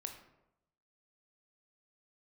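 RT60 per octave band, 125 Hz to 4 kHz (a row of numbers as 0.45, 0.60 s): 1.1, 0.90, 0.90, 0.85, 0.65, 0.45 s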